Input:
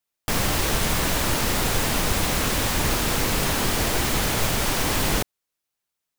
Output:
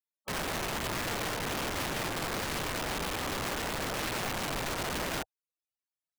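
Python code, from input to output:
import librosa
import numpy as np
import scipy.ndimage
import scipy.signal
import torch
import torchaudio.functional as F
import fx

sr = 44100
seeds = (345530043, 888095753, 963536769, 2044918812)

y = fx.spec_topn(x, sr, count=32)
y = (np.mod(10.0 ** (23.5 / 20.0) * y + 1.0, 2.0) - 1.0) / 10.0 ** (23.5 / 20.0)
y = y * librosa.db_to_amplitude(-5.5)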